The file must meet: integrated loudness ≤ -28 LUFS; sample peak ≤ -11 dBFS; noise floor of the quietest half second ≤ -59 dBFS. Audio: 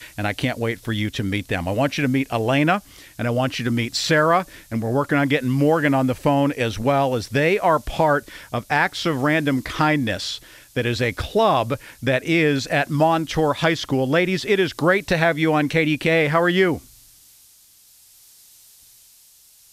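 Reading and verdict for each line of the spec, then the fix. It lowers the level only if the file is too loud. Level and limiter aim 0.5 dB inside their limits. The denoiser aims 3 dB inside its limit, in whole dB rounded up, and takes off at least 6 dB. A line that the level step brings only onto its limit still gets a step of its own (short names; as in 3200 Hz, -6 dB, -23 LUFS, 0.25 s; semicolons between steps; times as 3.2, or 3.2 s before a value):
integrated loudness -20.5 LUFS: fail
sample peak -6.0 dBFS: fail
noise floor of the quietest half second -52 dBFS: fail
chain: gain -8 dB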